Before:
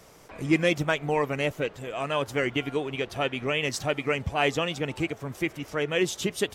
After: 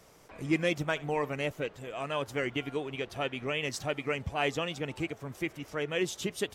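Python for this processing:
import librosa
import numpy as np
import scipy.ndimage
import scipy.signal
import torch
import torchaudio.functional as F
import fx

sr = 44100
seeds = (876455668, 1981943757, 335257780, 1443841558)

y = fx.room_flutter(x, sr, wall_m=11.9, rt60_s=0.21, at=(0.89, 1.32))
y = y * librosa.db_to_amplitude(-5.5)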